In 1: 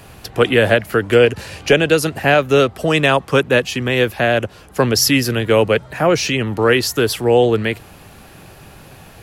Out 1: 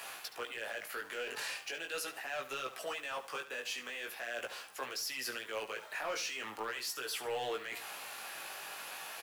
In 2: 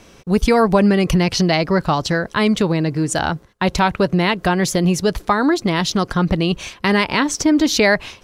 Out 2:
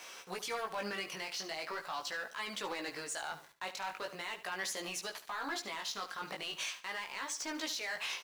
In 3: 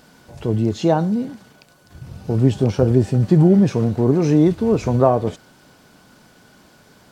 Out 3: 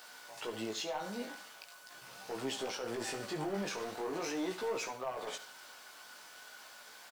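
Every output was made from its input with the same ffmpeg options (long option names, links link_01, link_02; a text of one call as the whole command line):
ffmpeg -i in.wav -af "highpass=930,areverse,acompressor=threshold=-31dB:ratio=6,areverse,alimiter=level_in=5dB:limit=-24dB:level=0:latency=1:release=66,volume=-5dB,asoftclip=type=hard:threshold=-34dB,flanger=delay=15:depth=5.4:speed=0.41,acrusher=bits=10:mix=0:aa=0.000001,aecho=1:1:72|144|216:0.211|0.0571|0.0154,volume=4dB" out.wav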